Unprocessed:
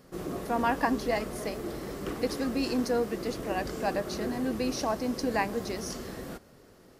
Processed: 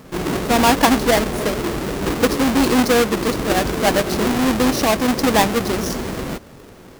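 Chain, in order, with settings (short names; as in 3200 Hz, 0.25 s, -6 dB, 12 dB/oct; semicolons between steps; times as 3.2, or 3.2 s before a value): half-waves squared off; gain +9 dB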